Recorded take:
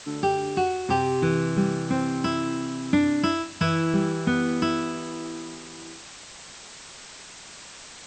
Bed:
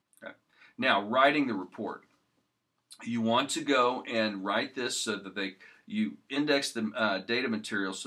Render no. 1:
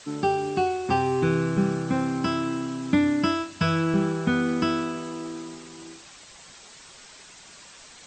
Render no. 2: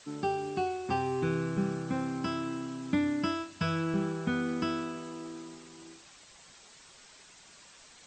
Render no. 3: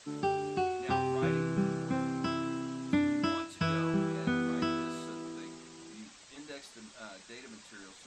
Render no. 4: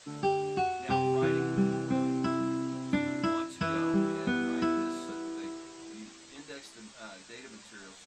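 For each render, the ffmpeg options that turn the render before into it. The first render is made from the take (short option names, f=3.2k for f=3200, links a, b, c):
-af "afftdn=nr=6:nf=-44"
-af "volume=-7.5dB"
-filter_complex "[1:a]volume=-19.5dB[a];[0:a][a]amix=inputs=2:normalize=0"
-filter_complex "[0:a]asplit=2[a][b];[b]adelay=15,volume=-4dB[c];[a][c]amix=inputs=2:normalize=0,asplit=2[d][e];[e]adelay=816.3,volume=-17dB,highshelf=f=4k:g=-18.4[f];[d][f]amix=inputs=2:normalize=0"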